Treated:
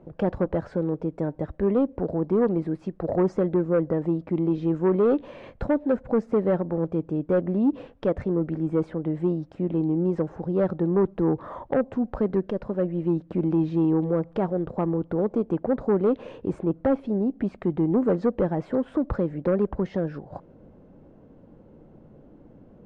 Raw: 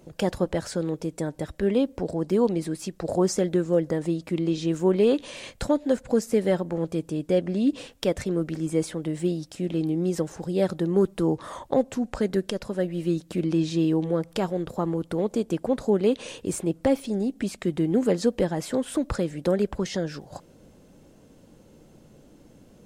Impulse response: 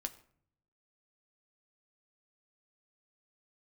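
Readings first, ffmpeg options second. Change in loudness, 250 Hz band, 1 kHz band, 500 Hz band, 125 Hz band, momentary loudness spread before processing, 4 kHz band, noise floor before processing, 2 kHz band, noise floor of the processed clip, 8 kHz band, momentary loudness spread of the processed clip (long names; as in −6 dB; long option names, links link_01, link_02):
+0.5 dB, +1.0 dB, +1.0 dB, +0.5 dB, +1.5 dB, 7 LU, below −15 dB, −54 dBFS, −3.0 dB, −52 dBFS, below −25 dB, 6 LU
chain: -filter_complex "[0:a]lowpass=1200,asplit=2[link_01][link_02];[link_02]aeval=exprs='0.299*sin(PI/2*2*val(0)/0.299)':channel_layout=same,volume=-6.5dB[link_03];[link_01][link_03]amix=inputs=2:normalize=0,volume=-5.5dB"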